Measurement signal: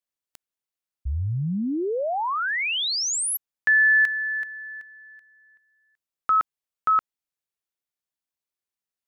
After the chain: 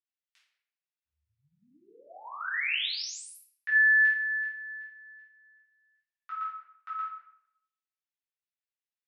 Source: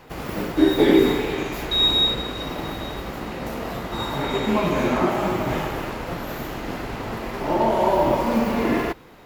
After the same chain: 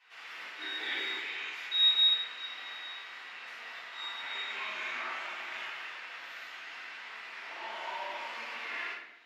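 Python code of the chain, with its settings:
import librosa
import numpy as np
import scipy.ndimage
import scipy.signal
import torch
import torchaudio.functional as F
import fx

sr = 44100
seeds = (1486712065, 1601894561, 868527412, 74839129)

y = fx.ladder_bandpass(x, sr, hz=2700.0, resonance_pct=25)
y = fx.room_shoebox(y, sr, seeds[0], volume_m3=230.0, walls='mixed', distance_m=3.5)
y = y * librosa.db_to_amplitude(-5.0)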